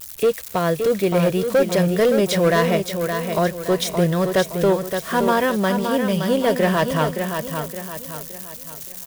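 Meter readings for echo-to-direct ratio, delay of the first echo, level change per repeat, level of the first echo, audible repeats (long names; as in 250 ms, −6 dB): −5.5 dB, 569 ms, −7.5 dB, −6.5 dB, 4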